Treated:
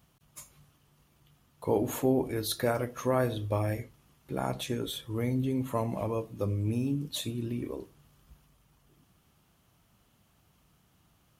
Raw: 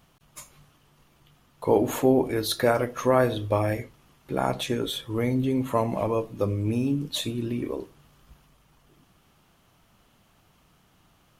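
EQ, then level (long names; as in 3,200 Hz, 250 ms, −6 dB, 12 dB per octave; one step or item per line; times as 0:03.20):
high-pass filter 47 Hz
low-shelf EQ 190 Hz +7.5 dB
high-shelf EQ 6,200 Hz +7 dB
−8.0 dB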